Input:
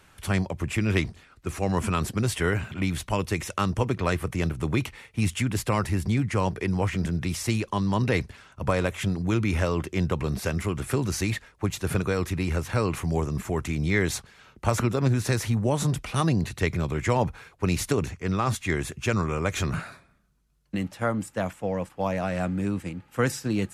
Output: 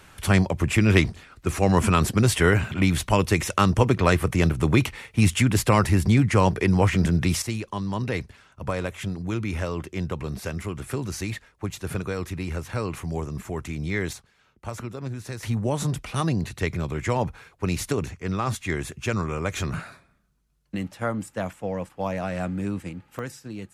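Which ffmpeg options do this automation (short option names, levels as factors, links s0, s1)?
-af "asetnsamples=n=441:p=0,asendcmd='7.42 volume volume -3.5dB;14.13 volume volume -10dB;15.43 volume volume -1dB;23.19 volume volume -10dB',volume=2"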